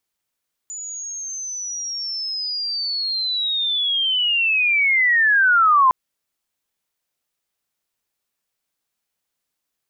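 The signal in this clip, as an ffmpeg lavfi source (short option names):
-f lavfi -i "aevalsrc='pow(10,(-29+18.5*t/5.21)/20)*sin(2*PI*(7000*t-6000*t*t/(2*5.21)))':d=5.21:s=44100"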